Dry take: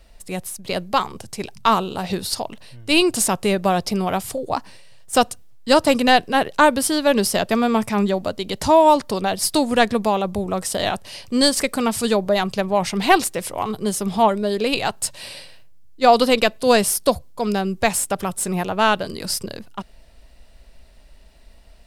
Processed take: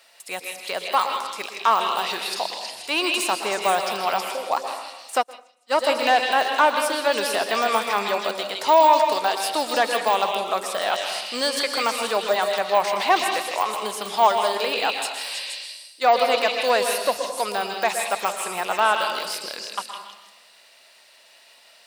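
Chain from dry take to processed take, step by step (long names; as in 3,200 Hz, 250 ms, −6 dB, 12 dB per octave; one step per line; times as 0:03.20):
de-essing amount 85%
high-pass filter 900 Hz 12 dB per octave
echo through a band-pass that steps 159 ms, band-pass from 3,200 Hz, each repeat 0.7 octaves, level −0.5 dB
on a send at −5.5 dB: convolution reverb RT60 1.1 s, pre-delay 112 ms
0:05.18–0:05.78: on the sum: expander for the loud parts 2.5 to 1, over −40 dBFS
level +6 dB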